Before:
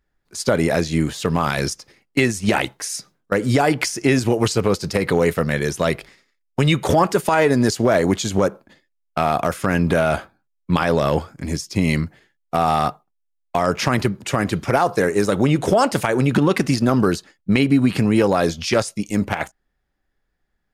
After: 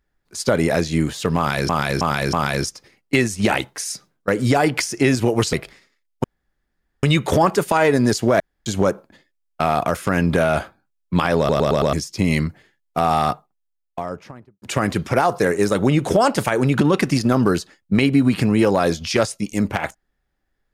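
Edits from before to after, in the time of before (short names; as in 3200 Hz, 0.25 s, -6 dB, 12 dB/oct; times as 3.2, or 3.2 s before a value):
1.37–1.69 loop, 4 plays
4.57–5.89 cut
6.6 insert room tone 0.79 s
7.97–8.23 room tone
10.95 stutter in place 0.11 s, 5 plays
12.88–14.19 studio fade out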